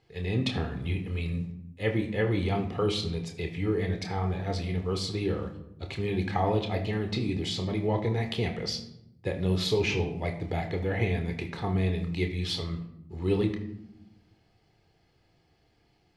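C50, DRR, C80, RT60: 10.0 dB, 4.5 dB, 13.0 dB, 0.80 s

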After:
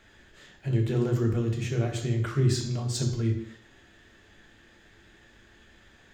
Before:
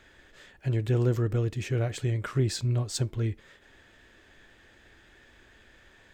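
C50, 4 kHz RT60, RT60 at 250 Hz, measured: 7.5 dB, 0.70 s, 0.65 s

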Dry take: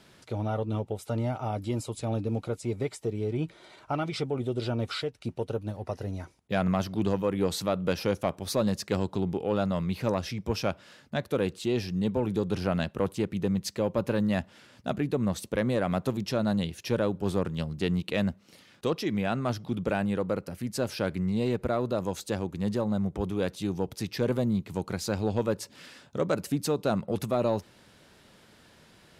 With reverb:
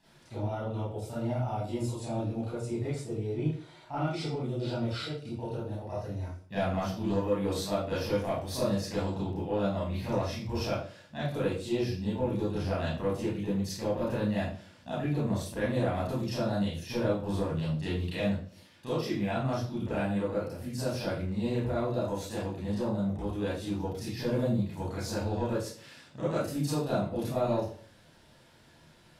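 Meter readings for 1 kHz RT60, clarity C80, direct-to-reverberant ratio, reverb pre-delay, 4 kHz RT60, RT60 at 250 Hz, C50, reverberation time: 0.45 s, 6.0 dB, -9.5 dB, 29 ms, 0.40 s, 0.50 s, -0.5 dB, 0.45 s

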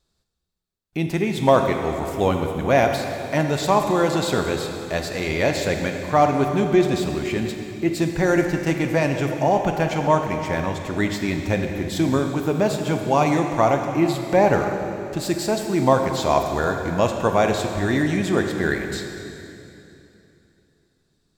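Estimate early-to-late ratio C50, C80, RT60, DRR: 5.0 dB, 6.0 dB, 2.9 s, 4.5 dB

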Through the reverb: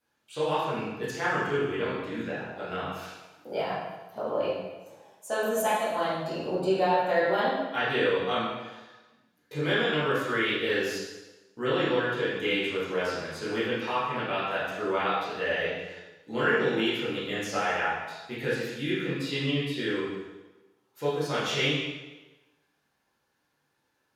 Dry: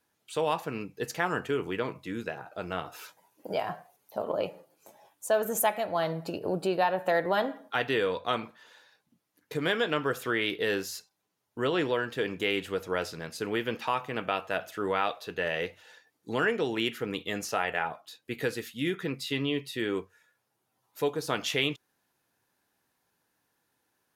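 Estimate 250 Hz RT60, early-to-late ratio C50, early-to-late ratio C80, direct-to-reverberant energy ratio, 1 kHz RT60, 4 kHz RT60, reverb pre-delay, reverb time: 1.1 s, -1.0 dB, 2.5 dB, -10.5 dB, 1.1 s, 1.0 s, 7 ms, 1.2 s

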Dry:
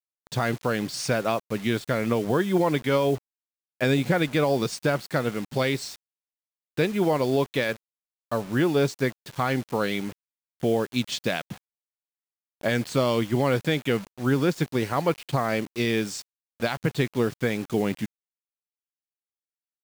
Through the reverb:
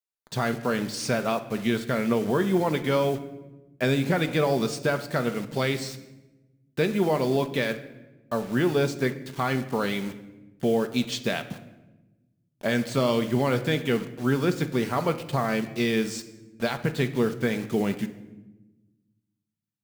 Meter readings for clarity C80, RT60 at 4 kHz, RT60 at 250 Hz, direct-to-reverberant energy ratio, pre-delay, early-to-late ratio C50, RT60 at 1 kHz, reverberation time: 15.5 dB, 0.75 s, 1.7 s, 7.5 dB, 4 ms, 13.0 dB, 0.95 s, 1.1 s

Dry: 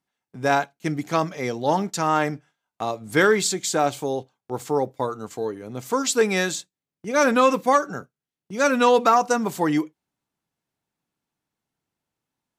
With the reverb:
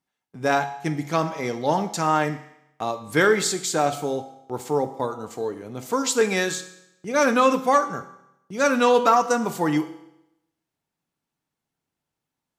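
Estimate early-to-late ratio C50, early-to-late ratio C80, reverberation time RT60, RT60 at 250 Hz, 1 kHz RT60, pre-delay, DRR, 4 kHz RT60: 12.5 dB, 15.0 dB, 0.85 s, 0.85 s, 0.85 s, 6 ms, 9.0 dB, 0.80 s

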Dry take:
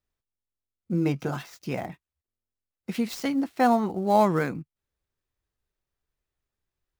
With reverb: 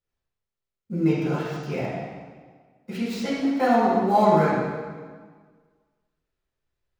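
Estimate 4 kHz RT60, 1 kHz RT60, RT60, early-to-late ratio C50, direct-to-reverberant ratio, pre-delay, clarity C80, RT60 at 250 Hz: 1.3 s, 1.6 s, 1.6 s, -1.5 dB, -10.0 dB, 3 ms, 1.0 dB, 1.7 s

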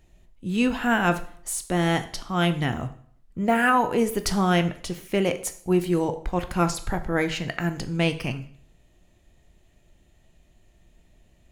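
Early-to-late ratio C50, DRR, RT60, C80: 14.0 dB, 9.0 dB, 0.55 s, 17.5 dB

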